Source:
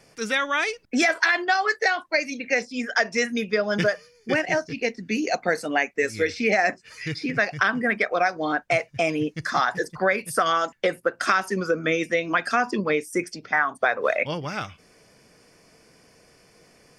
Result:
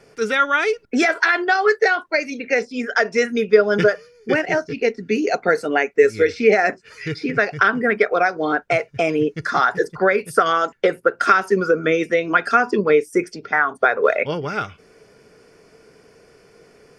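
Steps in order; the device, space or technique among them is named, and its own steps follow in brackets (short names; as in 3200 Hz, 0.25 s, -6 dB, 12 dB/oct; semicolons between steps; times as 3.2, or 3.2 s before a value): inside a helmet (high shelf 4400 Hz -7 dB; small resonant body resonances 420/1400 Hz, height 11 dB, ringing for 45 ms); gain +3 dB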